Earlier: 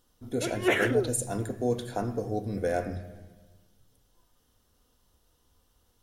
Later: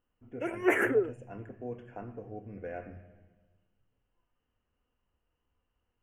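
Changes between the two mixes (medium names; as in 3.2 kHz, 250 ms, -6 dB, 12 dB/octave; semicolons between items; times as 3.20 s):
speech: add four-pole ladder low-pass 3.1 kHz, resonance 75%; master: add Butterworth band-stop 3.9 kHz, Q 0.91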